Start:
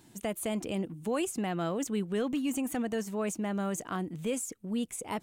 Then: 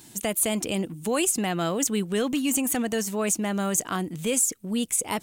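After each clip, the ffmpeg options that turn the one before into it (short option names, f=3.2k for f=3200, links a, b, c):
-af "highshelf=f=2.9k:g=11,volume=5dB"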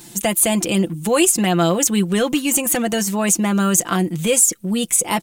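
-af "aecho=1:1:5.8:0.62,volume=7dB"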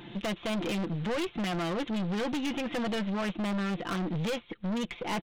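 -af "acompressor=threshold=-17dB:ratio=4,aresample=8000,acrusher=bits=4:mode=log:mix=0:aa=0.000001,aresample=44100,aeval=exprs='(tanh(28.2*val(0)+0.3)-tanh(0.3))/28.2':c=same"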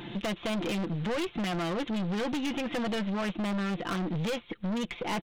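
-af "acompressor=threshold=-42dB:ratio=1.5,volume=5dB"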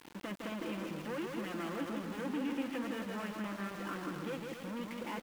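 -filter_complex "[0:a]highpass=270,equalizer=f=280:t=q:w=4:g=6,equalizer=f=410:t=q:w=4:g=-4,equalizer=f=710:t=q:w=4:g=-9,equalizer=f=2.2k:t=q:w=4:g=-4,lowpass=f=2.6k:w=0.5412,lowpass=f=2.6k:w=1.3066,asplit=2[a][b];[b]aecho=0:1:160|272|350.4|405.3|443.7:0.631|0.398|0.251|0.158|0.1[c];[a][c]amix=inputs=2:normalize=0,aeval=exprs='val(0)*gte(abs(val(0)),0.0112)':c=same,volume=-6.5dB"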